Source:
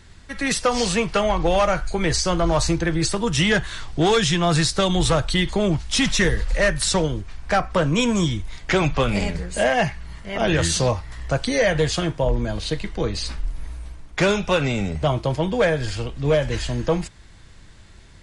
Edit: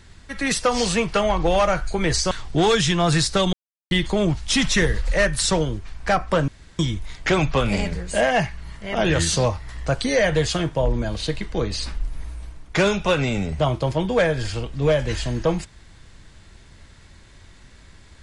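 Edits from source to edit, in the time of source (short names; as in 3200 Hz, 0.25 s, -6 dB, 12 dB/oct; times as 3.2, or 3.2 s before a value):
2.31–3.74 cut
4.96–5.34 mute
7.91–8.22 room tone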